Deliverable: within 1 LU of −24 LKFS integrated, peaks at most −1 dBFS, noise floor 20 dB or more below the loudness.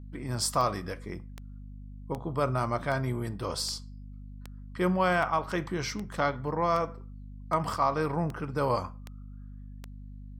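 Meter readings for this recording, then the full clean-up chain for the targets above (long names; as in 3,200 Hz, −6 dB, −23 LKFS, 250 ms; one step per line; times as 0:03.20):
number of clicks 13; mains hum 50 Hz; hum harmonics up to 250 Hz; level of the hum −41 dBFS; integrated loudness −30.0 LKFS; sample peak −13.0 dBFS; target loudness −24.0 LKFS
→ click removal
hum removal 50 Hz, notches 5
level +6 dB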